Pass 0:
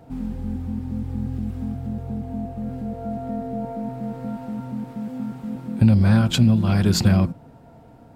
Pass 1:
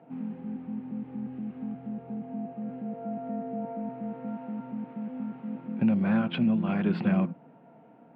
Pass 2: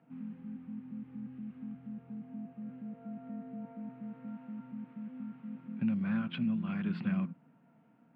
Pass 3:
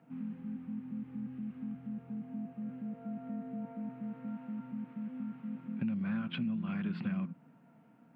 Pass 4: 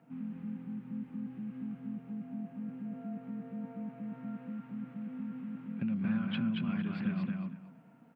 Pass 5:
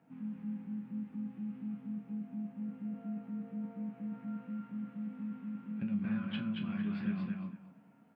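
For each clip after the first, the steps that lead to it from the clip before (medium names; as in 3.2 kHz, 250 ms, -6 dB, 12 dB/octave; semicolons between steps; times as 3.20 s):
elliptic band-pass 170–2700 Hz, stop band 40 dB; trim -5 dB
high-order bell 540 Hz -9.5 dB; trim -7 dB
compression 2.5:1, threshold -37 dBFS, peak gain reduction 7 dB; trim +3 dB
feedback delay 228 ms, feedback 18%, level -3 dB
chord resonator C#2 sus4, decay 0.25 s; trim +7 dB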